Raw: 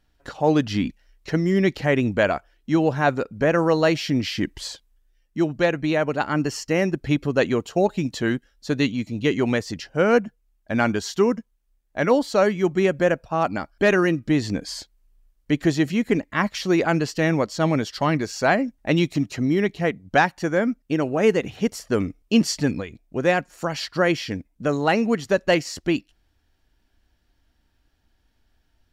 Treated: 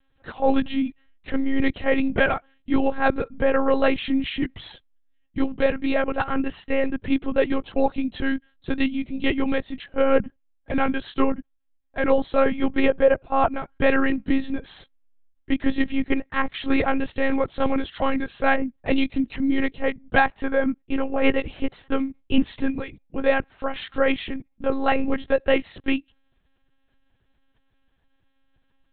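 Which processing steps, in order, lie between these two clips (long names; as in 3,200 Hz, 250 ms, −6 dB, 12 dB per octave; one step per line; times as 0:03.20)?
0:12.67–0:13.48: dynamic equaliser 670 Hz, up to +4 dB, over −30 dBFS, Q 1.1
one-pitch LPC vocoder at 8 kHz 270 Hz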